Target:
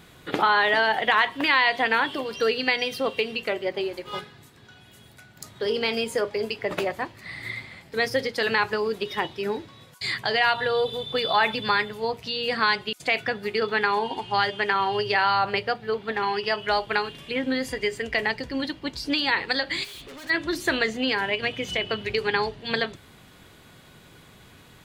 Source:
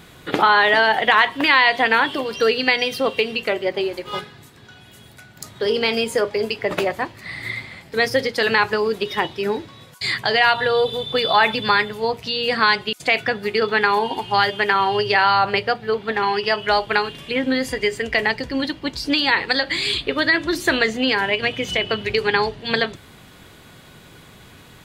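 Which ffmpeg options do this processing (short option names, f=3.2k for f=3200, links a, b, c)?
-filter_complex "[0:a]asettb=1/sr,asplit=3[a][b][c];[a]atrim=end=13.844[d];[b]atrim=start=13.84:end=14.93,asetpts=PTS-STARTPTS,afade=t=in:d=0.004:c=qsin,afade=t=out:st=1.086:d=0.004:c=qsin,lowpass=9.2k[e];[c]atrim=start=14.926[f];[d][e]acrossfade=d=0.004:c1=hsin:c2=qsin[g];[g][f]acrossfade=d=0.004:c1=qsin:c2=hsin,asplit=3[h][i][j];[h]afade=t=out:st=19.83:d=0.02[k];[i]asoftclip=type=hard:threshold=-35dB,afade=t=in:st=19.83:d=0.02,afade=t=out:st=20.29:d=0.02[l];[j]afade=t=in:st=20.29:d=0.02[m];[k][l][m]amix=inputs=3:normalize=0,volume=-5.5dB"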